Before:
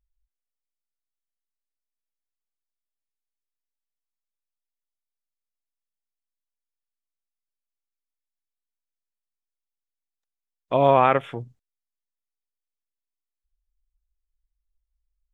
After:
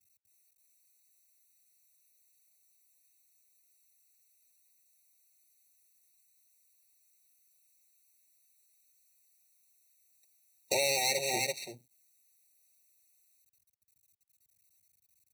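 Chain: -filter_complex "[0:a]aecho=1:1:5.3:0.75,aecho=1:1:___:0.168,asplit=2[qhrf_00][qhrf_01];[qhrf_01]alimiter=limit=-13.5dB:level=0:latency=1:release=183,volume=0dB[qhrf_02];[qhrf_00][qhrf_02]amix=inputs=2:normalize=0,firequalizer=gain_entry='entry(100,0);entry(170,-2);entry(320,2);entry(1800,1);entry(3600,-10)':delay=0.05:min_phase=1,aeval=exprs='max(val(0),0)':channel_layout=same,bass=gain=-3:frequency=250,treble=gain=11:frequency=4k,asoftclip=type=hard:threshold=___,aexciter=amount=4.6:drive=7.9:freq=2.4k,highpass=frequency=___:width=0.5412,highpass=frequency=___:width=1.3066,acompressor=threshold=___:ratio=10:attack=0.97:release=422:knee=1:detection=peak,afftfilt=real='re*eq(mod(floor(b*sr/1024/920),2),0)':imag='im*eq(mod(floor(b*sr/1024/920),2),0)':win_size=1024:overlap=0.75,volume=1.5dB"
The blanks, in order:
334, -11dB, 99, 99, -20dB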